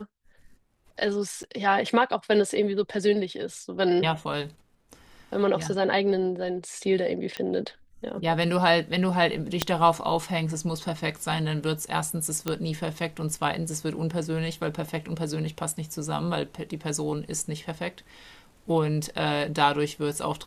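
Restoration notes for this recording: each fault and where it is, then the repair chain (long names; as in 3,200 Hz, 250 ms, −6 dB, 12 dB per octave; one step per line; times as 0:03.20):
0:01.43–0:01.44: drop-out 9.2 ms
0:07.37: click −17 dBFS
0:09.62: click −6 dBFS
0:12.48: click −12 dBFS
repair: click removal
repair the gap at 0:01.43, 9.2 ms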